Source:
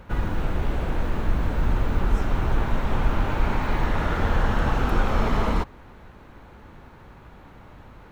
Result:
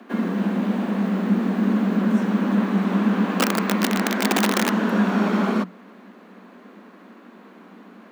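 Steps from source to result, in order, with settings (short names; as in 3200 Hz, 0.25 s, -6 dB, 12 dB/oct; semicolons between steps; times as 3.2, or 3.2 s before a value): 3.34–4.72 wrapped overs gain 14 dB; frequency shift +180 Hz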